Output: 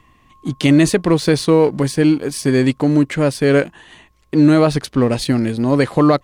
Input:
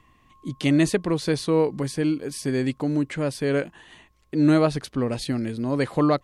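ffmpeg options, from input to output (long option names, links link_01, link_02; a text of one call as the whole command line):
ffmpeg -i in.wav -filter_complex "[0:a]asplit=2[link_01][link_02];[link_02]aeval=exprs='sgn(val(0))*max(abs(val(0))-0.0133,0)':channel_layout=same,volume=-4dB[link_03];[link_01][link_03]amix=inputs=2:normalize=0,alimiter=level_in=9dB:limit=-1dB:release=50:level=0:latency=1,volume=-3dB" out.wav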